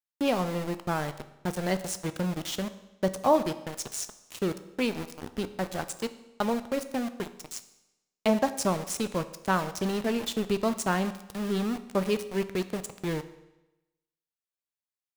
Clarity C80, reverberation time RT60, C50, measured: 16.0 dB, 1.0 s, 14.0 dB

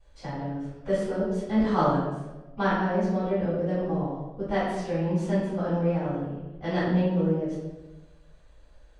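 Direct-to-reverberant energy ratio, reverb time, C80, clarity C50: -15.5 dB, 1.1 s, 2.5 dB, -0.5 dB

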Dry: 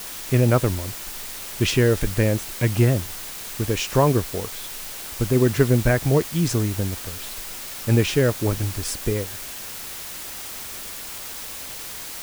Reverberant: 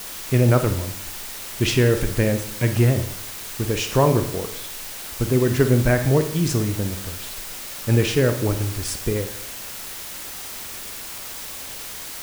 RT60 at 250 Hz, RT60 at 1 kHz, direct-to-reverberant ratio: 0.70 s, 0.65 s, 7.5 dB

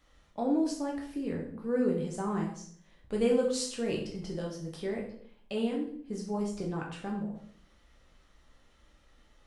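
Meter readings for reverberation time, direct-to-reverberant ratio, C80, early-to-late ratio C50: 0.60 s, -2.0 dB, 10.0 dB, 6.0 dB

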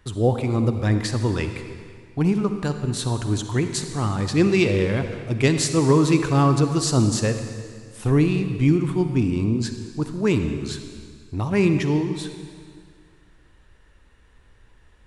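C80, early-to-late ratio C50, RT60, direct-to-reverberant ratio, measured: 8.5 dB, 8.0 dB, 2.0 s, 7.5 dB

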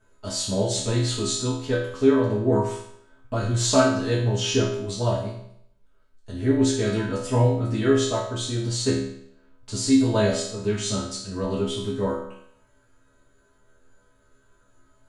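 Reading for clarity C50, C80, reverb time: 3.0 dB, 6.5 dB, 0.70 s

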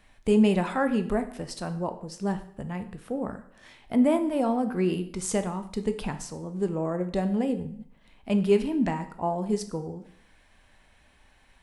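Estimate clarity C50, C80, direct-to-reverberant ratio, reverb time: 12.5 dB, 15.5 dB, 8.5 dB, 0.60 s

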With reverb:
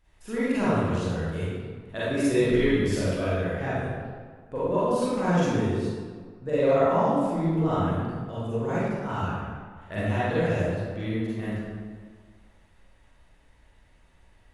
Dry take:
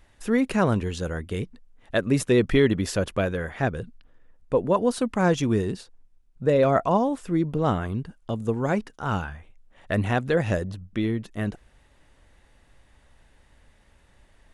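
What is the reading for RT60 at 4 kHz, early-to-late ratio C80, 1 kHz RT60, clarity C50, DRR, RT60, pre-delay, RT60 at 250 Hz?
1.0 s, -1.5 dB, 1.8 s, -6.0 dB, -11.5 dB, 1.7 s, 35 ms, 1.7 s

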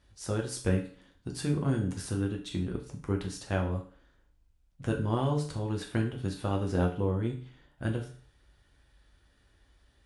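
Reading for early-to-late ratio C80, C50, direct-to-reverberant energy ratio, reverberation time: 13.5 dB, 9.5 dB, 0.5 dB, 0.45 s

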